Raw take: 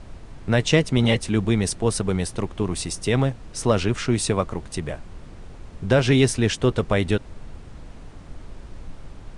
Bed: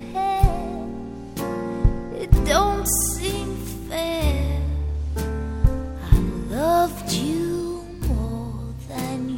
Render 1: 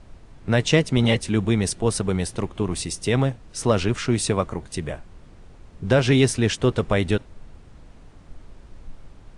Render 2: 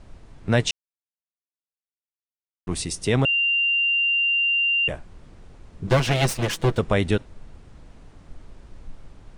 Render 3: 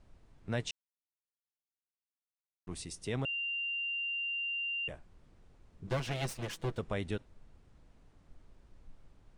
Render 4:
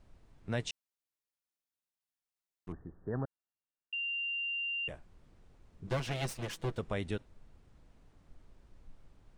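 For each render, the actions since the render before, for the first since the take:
noise reduction from a noise print 6 dB
0:00.71–0:02.67: silence; 0:03.25–0:04.88: beep over 2,780 Hz −18 dBFS; 0:05.87–0:06.78: lower of the sound and its delayed copy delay 6 ms
level −15 dB
0:02.72–0:03.93: Chebyshev low-pass filter 1,800 Hz, order 10

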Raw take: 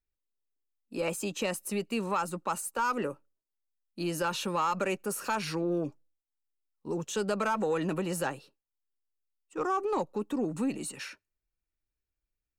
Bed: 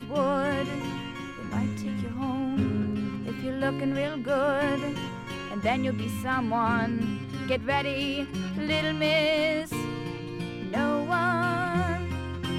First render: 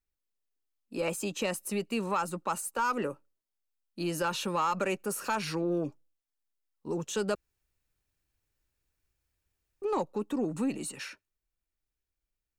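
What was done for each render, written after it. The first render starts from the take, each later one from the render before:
0:07.35–0:09.82: fill with room tone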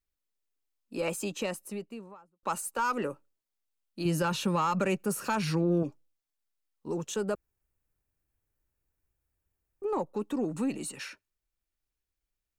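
0:01.18–0:02.43: fade out and dull
0:04.05–0:05.83: parametric band 140 Hz +10 dB 1.5 octaves
0:07.14–0:10.14: parametric band 4,100 Hz −10.5 dB 2 octaves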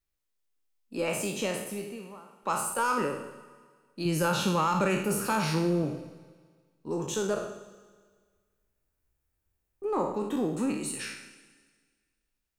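peak hold with a decay on every bin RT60 0.68 s
four-comb reverb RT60 1.7 s, combs from 25 ms, DRR 12.5 dB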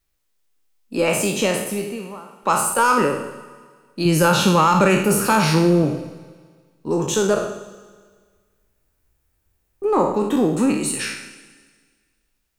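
level +11 dB

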